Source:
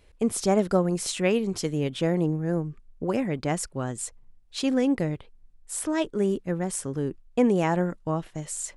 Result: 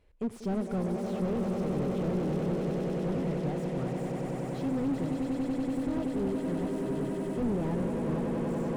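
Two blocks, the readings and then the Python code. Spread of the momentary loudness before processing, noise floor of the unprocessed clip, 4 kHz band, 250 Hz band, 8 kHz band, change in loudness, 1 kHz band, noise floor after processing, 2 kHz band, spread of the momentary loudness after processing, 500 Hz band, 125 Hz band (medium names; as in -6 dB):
9 LU, -56 dBFS, -14.0 dB, -3.0 dB, -21.0 dB, -5.0 dB, -6.5 dB, -37 dBFS, -10.0 dB, 3 LU, -5.5 dB, -3.0 dB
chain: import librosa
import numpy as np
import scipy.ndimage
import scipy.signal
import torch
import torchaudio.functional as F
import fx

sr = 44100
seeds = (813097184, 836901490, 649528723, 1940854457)

p1 = fx.high_shelf(x, sr, hz=3000.0, db=-11.5)
p2 = p1 + fx.echo_swell(p1, sr, ms=95, loudest=8, wet_db=-9, dry=0)
p3 = fx.slew_limit(p2, sr, full_power_hz=31.0)
y = p3 * 10.0 ** (-7.0 / 20.0)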